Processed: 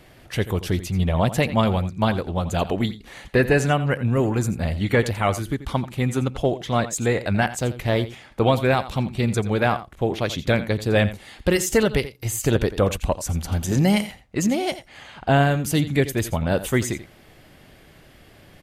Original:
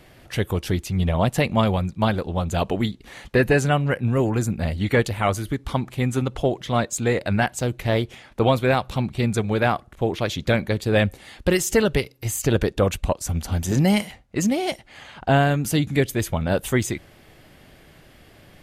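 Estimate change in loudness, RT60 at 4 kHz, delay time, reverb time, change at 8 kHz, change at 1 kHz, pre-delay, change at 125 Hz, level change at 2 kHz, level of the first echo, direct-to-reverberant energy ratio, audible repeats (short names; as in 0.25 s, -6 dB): 0.0 dB, none, 86 ms, none, 0.0 dB, 0.0 dB, none, 0.0 dB, 0.0 dB, -14.5 dB, none, 1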